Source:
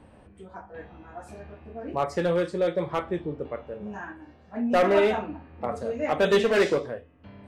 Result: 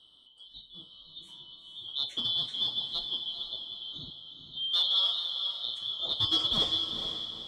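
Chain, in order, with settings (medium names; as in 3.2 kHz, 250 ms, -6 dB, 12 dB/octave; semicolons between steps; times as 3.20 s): four frequency bands reordered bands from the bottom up 2413; 4.10–5.49 s: high-pass 970 Hz 12 dB/octave; echo that smears into a reverb 455 ms, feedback 42%, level -7 dB; reverberation RT60 1.3 s, pre-delay 7 ms, DRR 18.5 dB; trim -7 dB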